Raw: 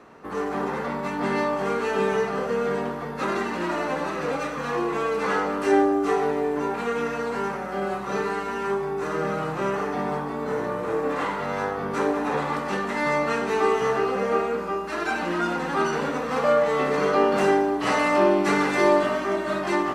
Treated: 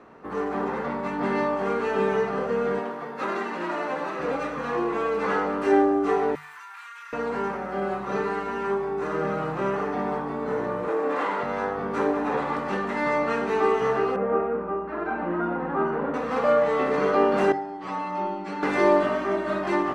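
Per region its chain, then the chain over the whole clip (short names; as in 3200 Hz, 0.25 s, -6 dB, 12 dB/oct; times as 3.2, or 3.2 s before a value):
2.79–4.2 HPF 93 Hz + low shelf 240 Hz -10 dB
6.35–7.13 inverse Chebyshev high-pass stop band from 600 Hz + high shelf 7200 Hz +12 dB + compressor, threshold -37 dBFS
10.88–11.43 HPF 280 Hz + fast leveller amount 50%
14.16–16.14 LPF 1400 Hz + de-hum 123.6 Hz, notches 37
17.52–18.63 Bessel low-pass 6800 Hz + metallic resonator 92 Hz, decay 0.3 s, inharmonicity 0.002
whole clip: high shelf 4100 Hz -12 dB; notches 50/100/150 Hz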